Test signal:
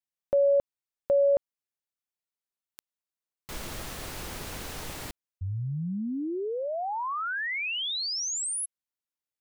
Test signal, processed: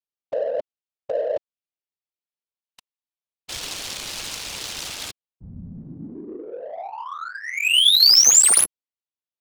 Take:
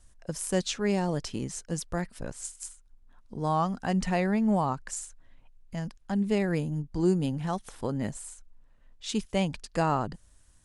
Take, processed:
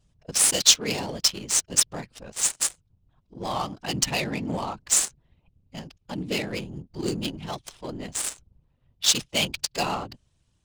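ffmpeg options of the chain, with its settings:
ffmpeg -i in.wav -af "aexciter=amount=10.4:drive=2.4:freq=2500,afftfilt=real='hypot(re,im)*cos(2*PI*random(0))':imag='hypot(re,im)*sin(2*PI*random(1))':win_size=512:overlap=0.75,adynamicsmooth=sensitivity=6:basefreq=1200,lowshelf=frequency=260:gain=-6.5,volume=5dB" out.wav

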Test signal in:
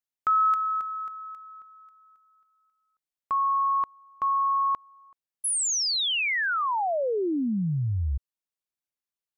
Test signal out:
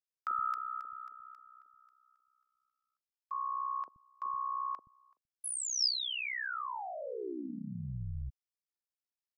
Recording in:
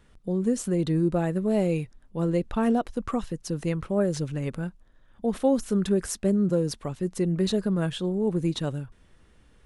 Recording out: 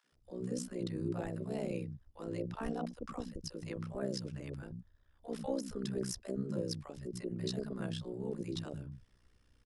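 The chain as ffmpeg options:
ffmpeg -i in.wav -filter_complex "[0:a]equalizer=frequency=5100:width_type=o:width=0.28:gain=10.5,tremolo=f=63:d=0.919,acrossover=split=210|680[link_01][link_02][link_03];[link_02]adelay=40[link_04];[link_01]adelay=120[link_05];[link_05][link_04][link_03]amix=inputs=3:normalize=0,volume=-7.5dB" out.wav

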